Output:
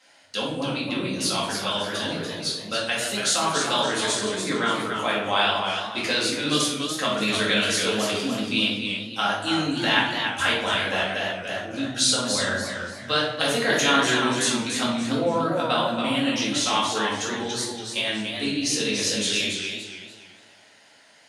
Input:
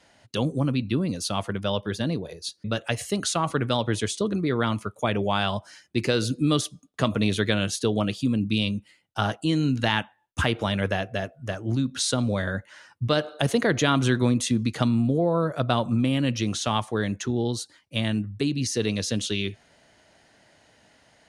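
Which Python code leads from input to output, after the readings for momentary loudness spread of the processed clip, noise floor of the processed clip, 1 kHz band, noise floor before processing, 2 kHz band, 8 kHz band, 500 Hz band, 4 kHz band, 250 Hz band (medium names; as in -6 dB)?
7 LU, -53 dBFS, +4.5 dB, -62 dBFS, +6.5 dB, +6.5 dB, +0.5 dB, +7.5 dB, -2.5 dB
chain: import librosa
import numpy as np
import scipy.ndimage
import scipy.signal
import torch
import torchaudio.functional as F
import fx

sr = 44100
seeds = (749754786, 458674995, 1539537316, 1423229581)

y = fx.highpass(x, sr, hz=1200.0, slope=6)
y = fx.room_shoebox(y, sr, seeds[0], volume_m3=200.0, walls='mixed', distance_m=2.1)
y = fx.echo_warbled(y, sr, ms=286, feedback_pct=34, rate_hz=2.8, cents=117, wet_db=-6.0)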